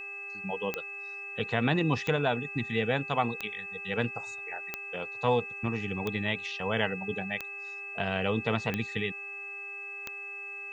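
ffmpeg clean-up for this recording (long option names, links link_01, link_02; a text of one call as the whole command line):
ffmpeg -i in.wav -af "adeclick=threshold=4,bandreject=frequency=400.3:width_type=h:width=4,bandreject=frequency=800.6:width_type=h:width=4,bandreject=frequency=1200.9:width_type=h:width=4,bandreject=frequency=1601.2:width_type=h:width=4,bandreject=frequency=2001.5:width_type=h:width=4,bandreject=frequency=2600:width=30,agate=range=-21dB:threshold=-33dB" out.wav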